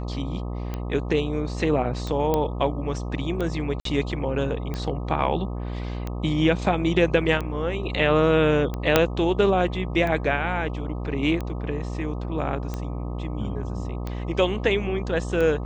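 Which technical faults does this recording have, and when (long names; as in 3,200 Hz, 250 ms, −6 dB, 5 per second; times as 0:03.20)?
mains buzz 60 Hz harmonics 21 −30 dBFS
scratch tick 45 rpm −17 dBFS
0:02.34: click −10 dBFS
0:03.80–0:03.85: drop-out 53 ms
0:08.96: click −1 dBFS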